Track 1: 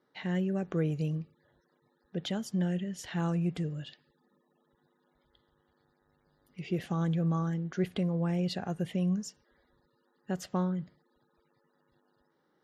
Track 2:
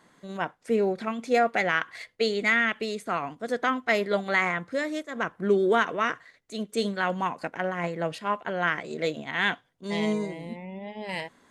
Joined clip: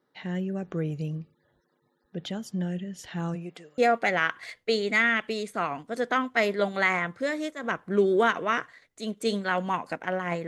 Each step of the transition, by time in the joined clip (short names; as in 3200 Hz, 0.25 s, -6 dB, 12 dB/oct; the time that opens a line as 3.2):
track 1
3.34–3.78 HPF 200 Hz -> 1100 Hz
3.78 switch to track 2 from 1.3 s